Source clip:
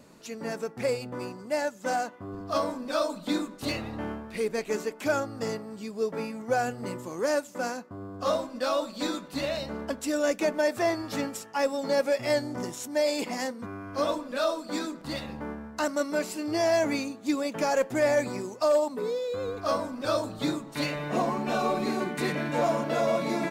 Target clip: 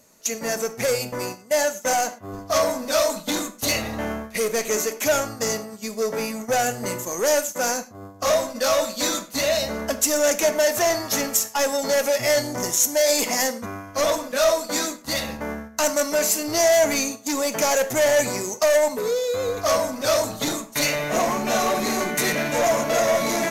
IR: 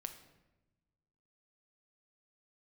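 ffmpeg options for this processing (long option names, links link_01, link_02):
-filter_complex "[0:a]asoftclip=type=tanh:threshold=-26dB,equalizer=frequency=160:width_type=o:width=0.33:gain=-8,equalizer=frequency=315:width_type=o:width=0.33:gain=-7,equalizer=frequency=630:width_type=o:width=0.33:gain=4,equalizer=frequency=2000:width_type=o:width=0.33:gain=4,equalizer=frequency=6300:width_type=o:width=0.33:gain=11,equalizer=frequency=12500:width_type=o:width=0.33:gain=11,agate=range=-13dB:threshold=-40dB:ratio=16:detection=peak,asplit=2[link_01][link_02];[1:a]atrim=start_sample=2205,afade=type=out:start_time=0.17:duration=0.01,atrim=end_sample=7938,highshelf=frequency=4400:gain=11[link_03];[link_02][link_03]afir=irnorm=-1:irlink=0,volume=7.5dB[link_04];[link_01][link_04]amix=inputs=2:normalize=0"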